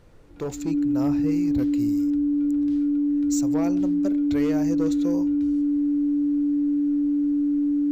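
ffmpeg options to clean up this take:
-af "bandreject=f=290:w=30,agate=range=0.0891:threshold=0.2"

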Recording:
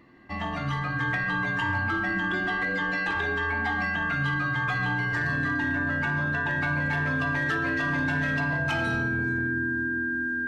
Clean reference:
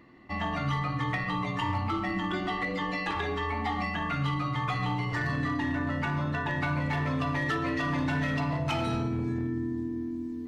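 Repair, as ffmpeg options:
-af "bandreject=f=1600:w=30"

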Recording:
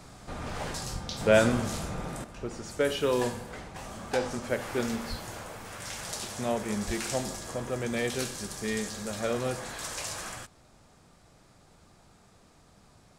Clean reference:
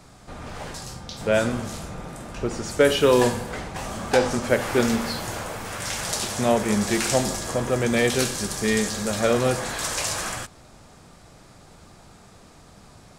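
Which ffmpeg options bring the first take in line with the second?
-filter_complex "[0:a]asplit=3[s0][s1][s2];[s0]afade=t=out:st=0.92:d=0.02[s3];[s1]highpass=f=140:w=0.5412,highpass=f=140:w=1.3066,afade=t=in:st=0.92:d=0.02,afade=t=out:st=1.04:d=0.02[s4];[s2]afade=t=in:st=1.04:d=0.02[s5];[s3][s4][s5]amix=inputs=3:normalize=0,asplit=3[s6][s7][s8];[s6]afade=t=out:st=5.09:d=0.02[s9];[s7]highpass=f=140:w=0.5412,highpass=f=140:w=1.3066,afade=t=in:st=5.09:d=0.02,afade=t=out:st=5.21:d=0.02[s10];[s8]afade=t=in:st=5.21:d=0.02[s11];[s9][s10][s11]amix=inputs=3:normalize=0,asplit=3[s12][s13][s14];[s12]afade=t=out:st=6.86:d=0.02[s15];[s13]highpass=f=140:w=0.5412,highpass=f=140:w=1.3066,afade=t=in:st=6.86:d=0.02,afade=t=out:st=6.98:d=0.02[s16];[s14]afade=t=in:st=6.98:d=0.02[s17];[s15][s16][s17]amix=inputs=3:normalize=0,asetnsamples=n=441:p=0,asendcmd='2.24 volume volume 9.5dB',volume=1"

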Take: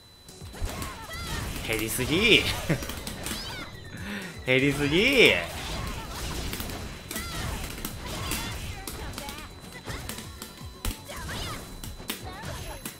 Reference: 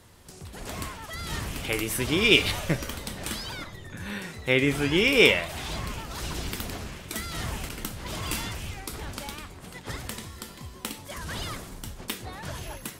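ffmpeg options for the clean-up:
-filter_complex "[0:a]bandreject=f=4000:w=30,asplit=3[s0][s1][s2];[s0]afade=t=out:st=0.6:d=0.02[s3];[s1]highpass=f=140:w=0.5412,highpass=f=140:w=1.3066,afade=t=in:st=0.6:d=0.02,afade=t=out:st=0.72:d=0.02[s4];[s2]afade=t=in:st=0.72:d=0.02[s5];[s3][s4][s5]amix=inputs=3:normalize=0,asplit=3[s6][s7][s8];[s6]afade=t=out:st=10.84:d=0.02[s9];[s7]highpass=f=140:w=0.5412,highpass=f=140:w=1.3066,afade=t=in:st=10.84:d=0.02,afade=t=out:st=10.96:d=0.02[s10];[s8]afade=t=in:st=10.96:d=0.02[s11];[s9][s10][s11]amix=inputs=3:normalize=0"

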